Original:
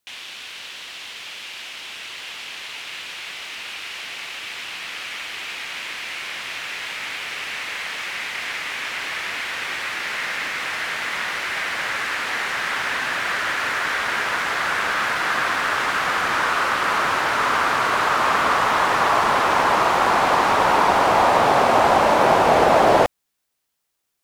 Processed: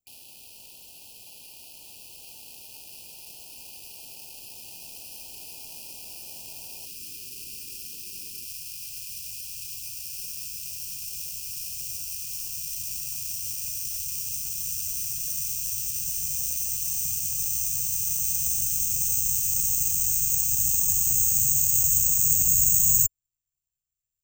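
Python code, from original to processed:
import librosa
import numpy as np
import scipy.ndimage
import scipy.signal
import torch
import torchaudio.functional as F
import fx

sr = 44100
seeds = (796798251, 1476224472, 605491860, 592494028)

y = fx.riaa(x, sr, side='playback')
y = (np.kron(scipy.signal.resample_poly(y, 1, 6), np.eye(6)[0]) * 6)[:len(y)]
y = fx.brickwall_bandstop(y, sr, low_hz=fx.steps((0.0, 960.0), (6.85, 450.0), (8.44, 180.0)), high_hz=2400.0)
y = F.gain(torch.from_numpy(y), -14.5).numpy()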